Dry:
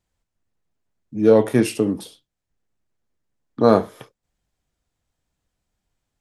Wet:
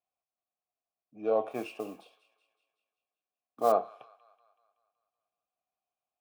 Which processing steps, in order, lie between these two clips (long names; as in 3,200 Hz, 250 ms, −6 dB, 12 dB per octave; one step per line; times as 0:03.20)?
formant filter a
delay with a high-pass on its return 188 ms, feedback 54%, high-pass 1,600 Hz, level −15.5 dB
0:01.50–0:03.72: noise that follows the level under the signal 22 dB